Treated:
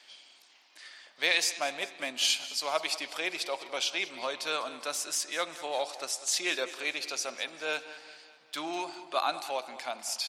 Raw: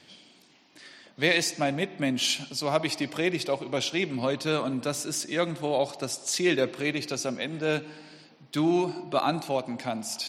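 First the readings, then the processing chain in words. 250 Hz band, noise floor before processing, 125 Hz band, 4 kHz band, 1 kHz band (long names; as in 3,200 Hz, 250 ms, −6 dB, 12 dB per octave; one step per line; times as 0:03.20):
−16.5 dB, −58 dBFS, below −25 dB, 0.0 dB, −2.5 dB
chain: high-pass filter 810 Hz 12 dB per octave
repeating echo 199 ms, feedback 52%, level −16.5 dB
dynamic equaliser 1,900 Hz, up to −5 dB, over −49 dBFS, Q 5.8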